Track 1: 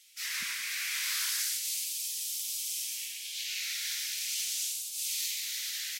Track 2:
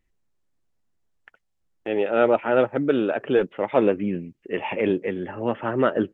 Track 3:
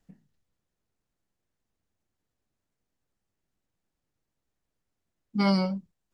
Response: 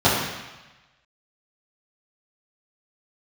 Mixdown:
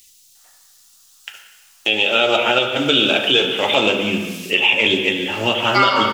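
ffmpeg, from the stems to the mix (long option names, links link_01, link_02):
-filter_complex "[0:a]adelay=1950,volume=-4.5dB[link_01];[1:a]bass=frequency=250:gain=2,treble=frequency=4000:gain=14,aexciter=amount=15.2:drive=6.3:freq=2800,volume=-2dB,asplit=3[link_02][link_03][link_04];[link_03]volume=-22.5dB[link_05];[2:a]equalizer=frequency=1200:width_type=o:width=0.32:gain=6.5,dynaudnorm=framelen=230:gausssize=13:maxgain=13.5dB,highpass=frequency=790:width=0.5412,highpass=frequency=790:width=1.3066,adelay=350,volume=3dB,asplit=2[link_06][link_07];[link_07]volume=-16.5dB[link_08];[link_04]apad=whole_len=350209[link_09];[link_01][link_09]sidechaincompress=threshold=-37dB:ratio=8:attack=16:release=151[link_10];[3:a]atrim=start_sample=2205[link_11];[link_05][link_08]amix=inputs=2:normalize=0[link_12];[link_12][link_11]afir=irnorm=-1:irlink=0[link_13];[link_10][link_02][link_06][link_13]amix=inputs=4:normalize=0,equalizer=frequency=1700:width=0.55:gain=13.5,alimiter=limit=-3.5dB:level=0:latency=1:release=435"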